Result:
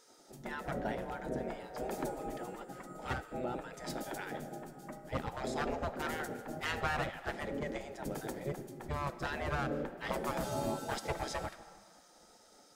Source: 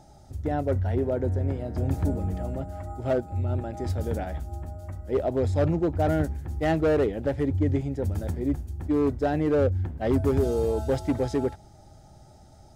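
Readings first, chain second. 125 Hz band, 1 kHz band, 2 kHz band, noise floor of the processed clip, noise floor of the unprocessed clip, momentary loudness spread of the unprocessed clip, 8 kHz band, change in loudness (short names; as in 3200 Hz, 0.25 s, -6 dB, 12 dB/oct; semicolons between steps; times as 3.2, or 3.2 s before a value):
-17.5 dB, -4.0 dB, 0.0 dB, -62 dBFS, -51 dBFS, 9 LU, n/a, -12.0 dB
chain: digital reverb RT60 2.1 s, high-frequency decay 0.65×, pre-delay 10 ms, DRR 13 dB; spectral gate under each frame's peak -15 dB weak; gain +1 dB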